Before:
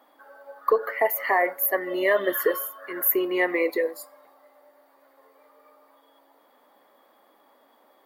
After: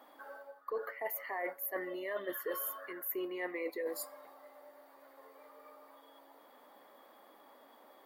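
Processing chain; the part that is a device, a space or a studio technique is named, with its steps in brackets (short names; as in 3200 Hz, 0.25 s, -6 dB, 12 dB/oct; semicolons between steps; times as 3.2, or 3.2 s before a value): compression on the reversed sound (reverse; compressor 8:1, threshold -36 dBFS, peak gain reduction 20.5 dB; reverse)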